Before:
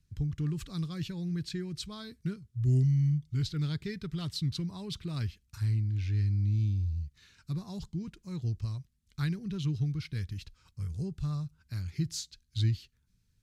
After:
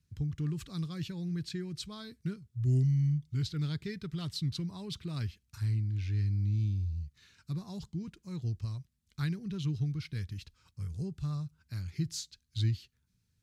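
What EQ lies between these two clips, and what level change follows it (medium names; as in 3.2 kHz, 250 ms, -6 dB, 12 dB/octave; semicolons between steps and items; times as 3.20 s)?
high-pass 61 Hz; -1.5 dB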